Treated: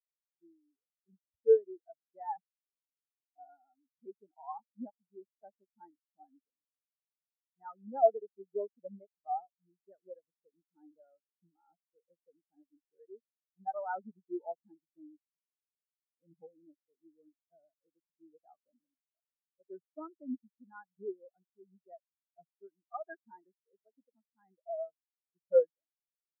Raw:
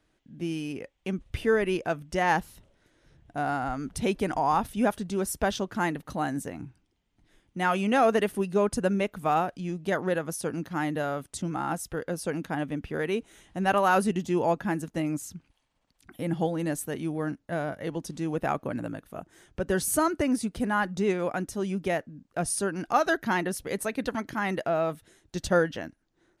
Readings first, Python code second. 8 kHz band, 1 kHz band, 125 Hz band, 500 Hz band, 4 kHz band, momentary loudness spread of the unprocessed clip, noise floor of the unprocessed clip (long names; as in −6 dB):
below −40 dB, −13.5 dB, below −35 dB, −7.5 dB, below −40 dB, 10 LU, −73 dBFS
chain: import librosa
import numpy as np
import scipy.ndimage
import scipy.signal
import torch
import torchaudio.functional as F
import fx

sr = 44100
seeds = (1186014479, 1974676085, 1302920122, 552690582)

y = scipy.signal.sosfilt(scipy.signal.butter(2, 2700.0, 'lowpass', fs=sr, output='sos'), x)
y = fx.low_shelf(y, sr, hz=190.0, db=-8.5)
y = fx.spectral_expand(y, sr, expansion=4.0)
y = y * 10.0 ** (-2.5 / 20.0)